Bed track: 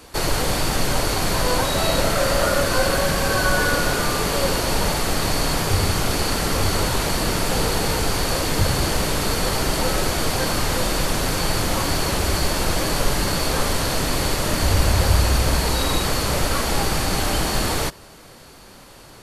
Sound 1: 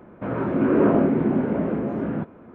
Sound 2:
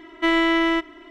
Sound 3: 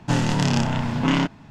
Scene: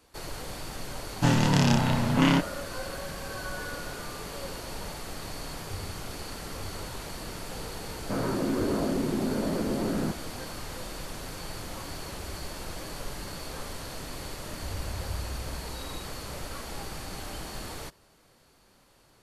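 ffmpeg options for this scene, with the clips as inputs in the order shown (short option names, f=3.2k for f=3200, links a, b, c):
-filter_complex "[0:a]volume=-17dB[a];[1:a]acompressor=threshold=-23dB:ratio=6:attack=3.2:release=140:knee=1:detection=peak[b];[3:a]atrim=end=1.5,asetpts=PTS-STARTPTS,volume=-1.5dB,afade=t=in:d=0.004:c=hsin,afade=t=out:st=1.496:d=0.004:c=hsin,adelay=1140[c];[b]atrim=end=2.54,asetpts=PTS-STARTPTS,volume=-1.5dB,afade=t=in:d=0.004:c=hsin,afade=t=out:st=2.536:d=0.004:c=hsin,adelay=7880[d];[a][c][d]amix=inputs=3:normalize=0"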